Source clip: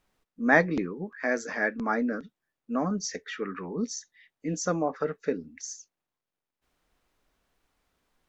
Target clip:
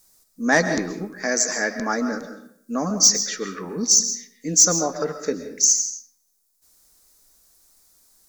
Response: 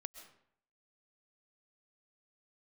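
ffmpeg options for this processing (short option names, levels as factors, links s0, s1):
-filter_complex "[0:a]aexciter=amount=11.3:drive=4.8:freq=4400,aeval=exprs='0.75*sin(PI/2*1.58*val(0)/0.75)':c=same[s0];[1:a]atrim=start_sample=2205,asetrate=43659,aresample=44100[s1];[s0][s1]afir=irnorm=-1:irlink=0"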